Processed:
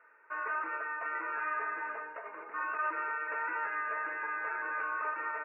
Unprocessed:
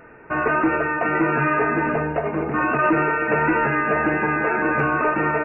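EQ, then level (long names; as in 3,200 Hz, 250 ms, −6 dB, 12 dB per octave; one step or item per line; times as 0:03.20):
four-pole ladder high-pass 680 Hz, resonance 60%
high-frequency loss of the air 430 metres
phaser with its sweep stopped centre 1,800 Hz, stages 4
0.0 dB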